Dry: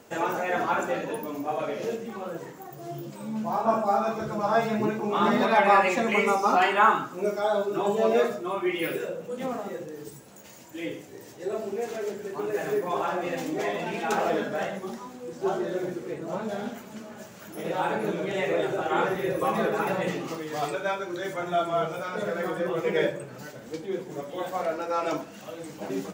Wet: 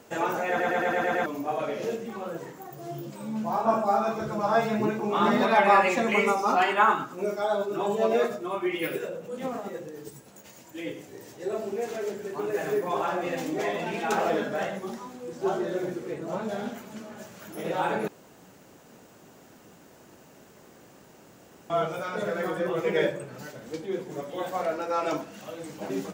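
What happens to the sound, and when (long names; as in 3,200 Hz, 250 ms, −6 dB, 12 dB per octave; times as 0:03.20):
0:00.49: stutter in place 0.11 s, 7 plays
0:06.30–0:11.01: amplitude tremolo 9.8 Hz, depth 31%
0:18.08–0:21.70: fill with room tone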